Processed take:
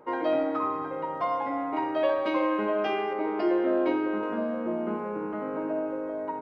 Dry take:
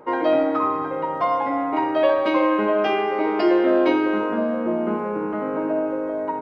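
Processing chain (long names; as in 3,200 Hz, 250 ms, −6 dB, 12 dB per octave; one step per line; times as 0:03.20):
0:03.13–0:04.23: high-shelf EQ 3,000 Hz −10 dB
level −7 dB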